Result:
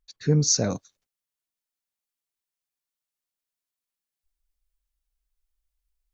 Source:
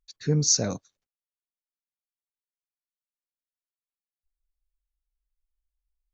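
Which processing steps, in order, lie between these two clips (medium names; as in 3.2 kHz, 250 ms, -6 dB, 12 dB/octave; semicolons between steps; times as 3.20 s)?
treble shelf 3.2 kHz -4.5 dB, from 0.76 s +4 dB; trim +3 dB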